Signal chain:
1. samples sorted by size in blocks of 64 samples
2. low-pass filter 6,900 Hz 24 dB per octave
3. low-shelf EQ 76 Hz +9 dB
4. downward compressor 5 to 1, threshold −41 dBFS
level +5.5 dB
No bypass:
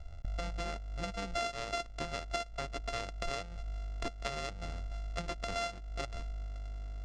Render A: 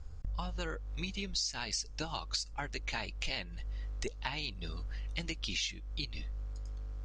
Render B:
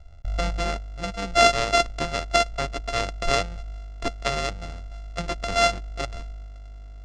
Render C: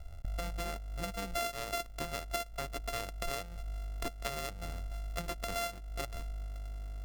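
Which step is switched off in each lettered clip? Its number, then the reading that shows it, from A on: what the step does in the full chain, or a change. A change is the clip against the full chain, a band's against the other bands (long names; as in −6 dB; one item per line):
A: 1, 500 Hz band −8.0 dB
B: 4, average gain reduction 8.5 dB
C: 2, 8 kHz band +4.5 dB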